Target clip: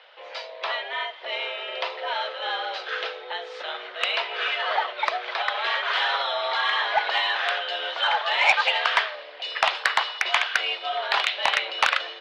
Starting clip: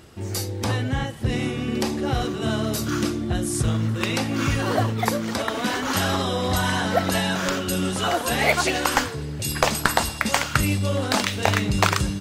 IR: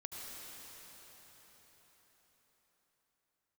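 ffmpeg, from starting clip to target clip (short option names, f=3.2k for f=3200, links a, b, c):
-af "highpass=f=430:t=q:w=0.5412,highpass=f=430:t=q:w=1.307,lowpass=f=3.5k:t=q:w=0.5176,lowpass=f=3.5k:t=q:w=0.7071,lowpass=f=3.5k:t=q:w=1.932,afreqshift=150,asoftclip=type=tanh:threshold=-10dB,highshelf=f=2.1k:g=10,volume=-1.5dB"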